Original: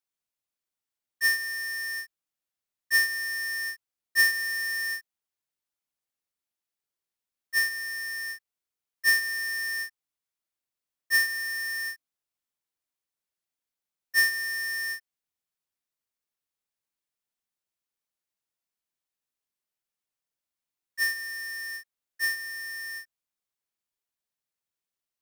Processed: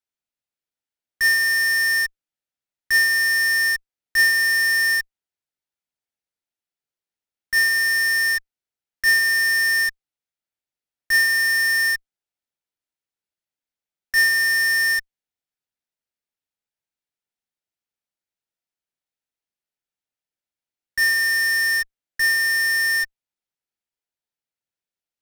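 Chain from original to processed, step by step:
high-shelf EQ 6,600 Hz −8 dB
notch filter 1,100 Hz, Q 5.8
in parallel at −7.5 dB: fuzz pedal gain 52 dB, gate −59 dBFS

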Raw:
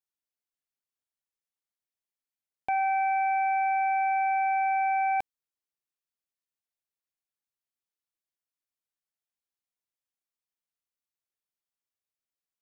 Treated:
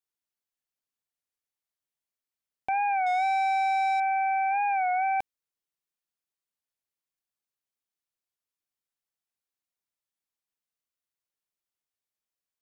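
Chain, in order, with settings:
0:03.07–0:04.00: leveller curve on the samples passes 1
wow of a warped record 33 1/3 rpm, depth 100 cents

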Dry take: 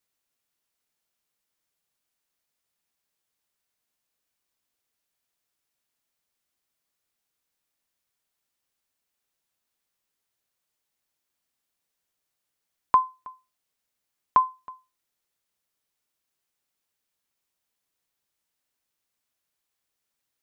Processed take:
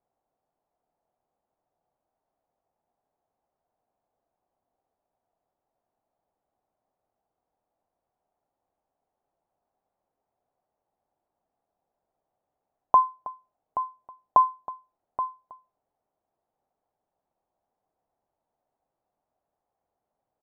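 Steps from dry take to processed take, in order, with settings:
brickwall limiter −14.5 dBFS, peak gain reduction 6 dB
low-pass with resonance 740 Hz, resonance Q 3.7
on a send: single-tap delay 827 ms −11 dB
on the sum: level +5 dB

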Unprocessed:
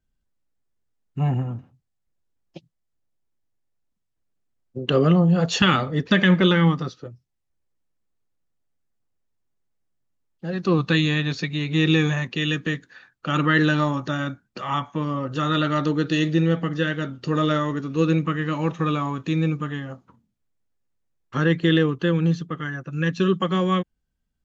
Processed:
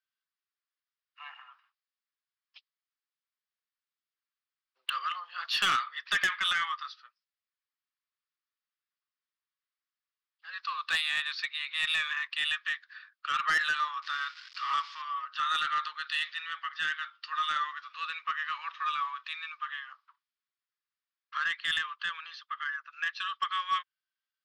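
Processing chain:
0:14.02–0:15.02: spike at every zero crossing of −26 dBFS
Chebyshev band-pass filter 1,100–5,100 Hz, order 4
soft clipping −19.5 dBFS, distortion −13 dB
level −1 dB

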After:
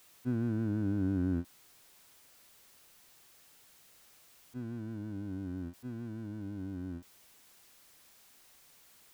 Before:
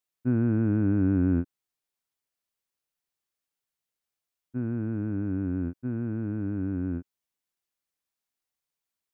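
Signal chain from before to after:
converter with a step at zero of −39.5 dBFS
expander for the loud parts 1.5 to 1, over −34 dBFS
level −8 dB

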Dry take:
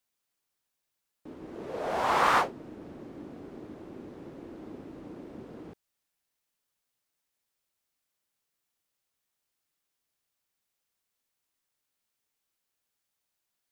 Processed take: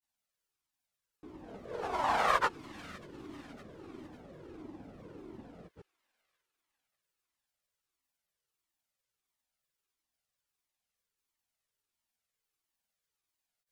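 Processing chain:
delay with a high-pass on its return 569 ms, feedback 47%, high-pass 2,100 Hz, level −14 dB
granular cloud
flanger whose copies keep moving one way falling 1.5 Hz
level +1.5 dB

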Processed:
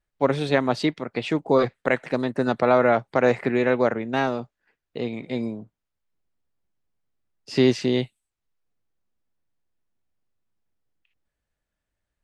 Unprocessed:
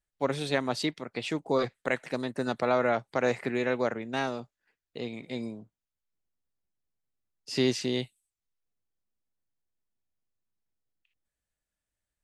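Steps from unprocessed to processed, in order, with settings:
low-pass filter 2,200 Hz 6 dB per octave
level +8 dB

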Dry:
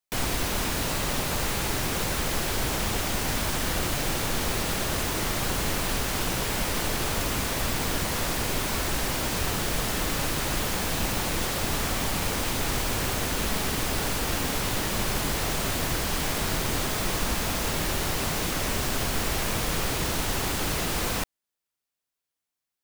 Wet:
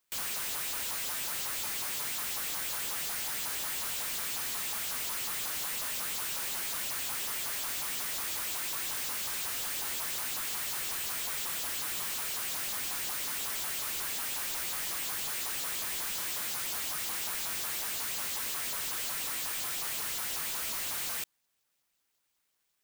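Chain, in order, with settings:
auto-filter high-pass saw up 5.5 Hz 840–4,300 Hz
bad sample-rate conversion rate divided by 4×, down none, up zero stuff
slew-rate limiting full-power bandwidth 220 Hz
level +1.5 dB

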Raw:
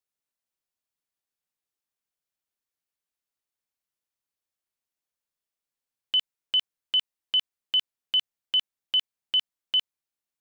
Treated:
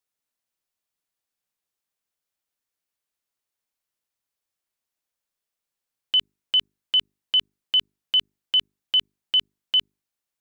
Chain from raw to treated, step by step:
mains-hum notches 50/100/150/200/250/300/350/400 Hz
level +3.5 dB

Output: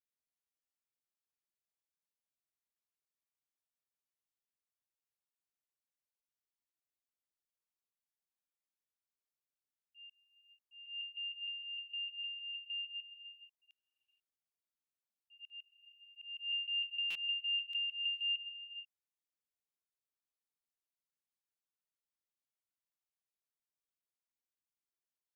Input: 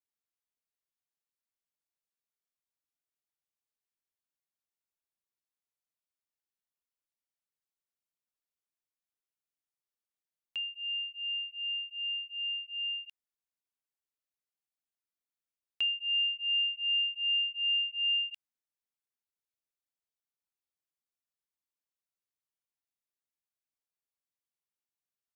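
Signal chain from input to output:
slices reordered back to front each 153 ms, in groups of 5
volume swells 310 ms
reverb whose tail is shaped and stops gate 500 ms rising, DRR 10 dB
buffer that repeats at 0:17.10, samples 256, times 8
level −6.5 dB

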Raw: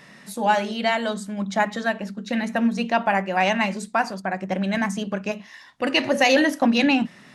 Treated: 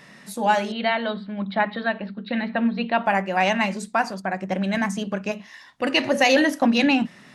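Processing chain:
0:00.72–0:03.04: elliptic low-pass filter 4,200 Hz, stop band 40 dB

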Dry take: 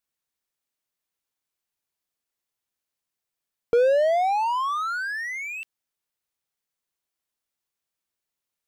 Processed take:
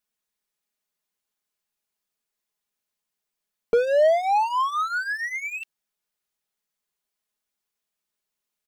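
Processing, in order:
mains-hum notches 50/100/150 Hz
comb filter 4.8 ms, depth 60%

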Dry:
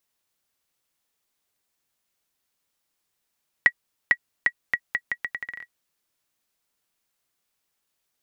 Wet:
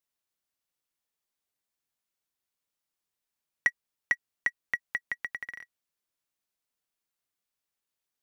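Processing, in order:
leveller curve on the samples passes 1
level −8 dB

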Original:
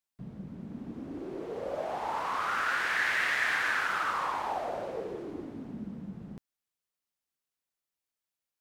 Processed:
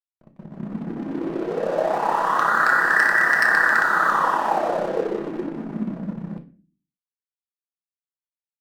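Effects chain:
brick-wall band-pass 140–2,000 Hz
amplitude modulation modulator 33 Hz, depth 35%
wave folding −22.5 dBFS
automatic gain control gain up to 13 dB
dead-zone distortion −38.5 dBFS
on a send: convolution reverb RT60 0.40 s, pre-delay 5 ms, DRR 5 dB
on the sum: level +1.5 dB

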